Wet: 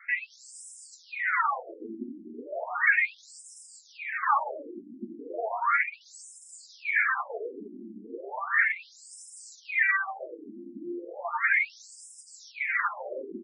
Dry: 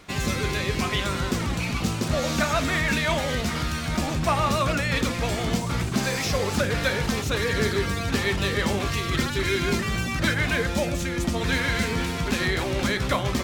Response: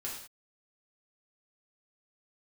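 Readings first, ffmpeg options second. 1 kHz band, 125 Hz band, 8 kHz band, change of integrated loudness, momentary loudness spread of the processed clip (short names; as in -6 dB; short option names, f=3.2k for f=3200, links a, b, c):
-2.5 dB, under -35 dB, -13.5 dB, -3.0 dB, 22 LU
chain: -filter_complex "[0:a]afftdn=nr=18:nf=-31,equalizer=f=3.4k:w=0.76:g=2.5,aresample=22050,aresample=44100,equalizer=f=210:w=0.31:g=-12.5,asplit=2[a][b];[b]highpass=f=720:p=1,volume=31dB,asoftclip=type=tanh:threshold=-13dB[c];[a][c]amix=inputs=2:normalize=0,lowpass=f=4.4k:p=1,volume=-6dB,acrossover=split=4600[d][e];[d]crystalizer=i=6:c=0[f];[e]alimiter=level_in=3.5dB:limit=-24dB:level=0:latency=1:release=294,volume=-3.5dB[g];[f][g]amix=inputs=2:normalize=0,asuperstop=centerf=4200:order=12:qfactor=0.78,aecho=1:1:377|754|1131|1508:0.141|0.0607|0.0261|0.0112,acontrast=47,flanger=delay=4.2:depth=5.6:regen=25:speed=0.81:shape=triangular,afftfilt=real='re*between(b*sr/1024,250*pow(7200/250,0.5+0.5*sin(2*PI*0.35*pts/sr))/1.41,250*pow(7200/250,0.5+0.5*sin(2*PI*0.35*pts/sr))*1.41)':imag='im*between(b*sr/1024,250*pow(7200/250,0.5+0.5*sin(2*PI*0.35*pts/sr))/1.41,250*pow(7200/250,0.5+0.5*sin(2*PI*0.35*pts/sr))*1.41)':win_size=1024:overlap=0.75,volume=-6.5dB"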